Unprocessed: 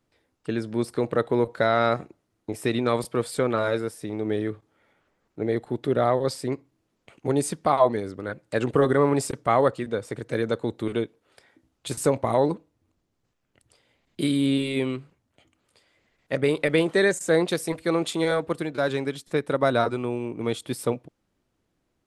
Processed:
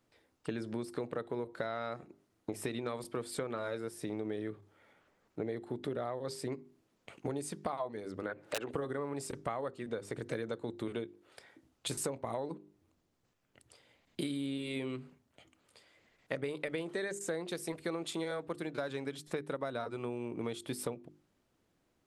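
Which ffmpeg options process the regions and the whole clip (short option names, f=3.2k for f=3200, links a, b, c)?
-filter_complex "[0:a]asettb=1/sr,asplit=3[a][b][c];[a]atrim=end=8.264[d];[b]atrim=start=8.26:end=8.71,asetpts=PTS-STARTPTS,afade=t=in:d=0.004:c=qsin,afade=t=out:st=0.446:d=0.004:c=qsin,bass=f=250:g=-13,treble=f=4k:g=-12,acompressor=mode=upward:threshold=-35dB:ratio=2.5:attack=3.2:release=140:knee=2.83:detection=peak,aeval=exprs='(mod(6.68*val(0)+1,2)-1)/6.68':c=same[e];[c]atrim=start=8.706[f];[d][e]acrossfade=d=0.004:c1=hsin:c2=qsin[g];[g][f]acrossfade=d=0.004:c1=qsin:c2=hsin,lowshelf=f=74:g=-6.5,bandreject=f=50:t=h:w=6,bandreject=f=100:t=h:w=6,bandreject=f=150:t=h:w=6,bandreject=f=200:t=h:w=6,bandreject=f=250:t=h:w=6,bandreject=f=300:t=h:w=6,bandreject=f=350:t=h:w=6,bandreject=f=400:t=h:w=6,acompressor=threshold=-34dB:ratio=10"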